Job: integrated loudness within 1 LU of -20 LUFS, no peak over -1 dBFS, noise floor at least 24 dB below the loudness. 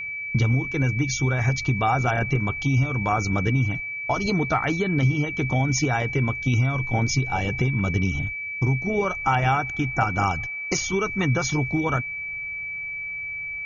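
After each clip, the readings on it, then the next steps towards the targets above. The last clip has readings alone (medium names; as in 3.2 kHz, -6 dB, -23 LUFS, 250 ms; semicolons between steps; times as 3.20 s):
steady tone 2.3 kHz; tone level -29 dBFS; loudness -23.5 LUFS; peak level -9.0 dBFS; loudness target -20.0 LUFS
-> band-stop 2.3 kHz, Q 30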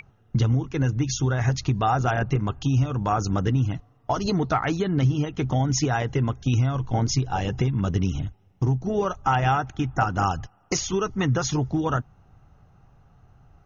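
steady tone not found; loudness -24.5 LUFS; peak level -9.5 dBFS; loudness target -20.0 LUFS
-> trim +4.5 dB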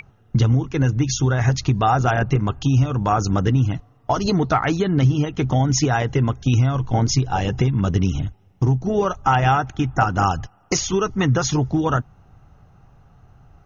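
loudness -20.0 LUFS; peak level -5.0 dBFS; noise floor -55 dBFS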